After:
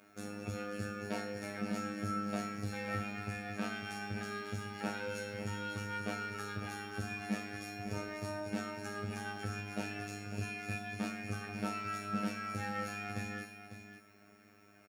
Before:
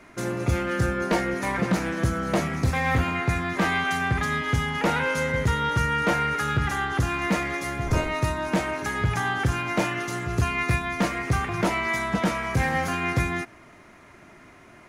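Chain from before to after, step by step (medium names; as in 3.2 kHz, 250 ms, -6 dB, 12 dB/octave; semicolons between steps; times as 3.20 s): flange 0.14 Hz, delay 9.8 ms, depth 9.1 ms, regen +40%; in parallel at -6.5 dB: hard clipper -32 dBFS, distortion -6 dB; on the sum: robot voice 102 Hz; comb of notches 1 kHz; added noise violet -71 dBFS; feedback comb 220 Hz, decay 0.92 s, mix 90%; on a send: delay 549 ms -10.5 dB; on the sum: trim +8 dB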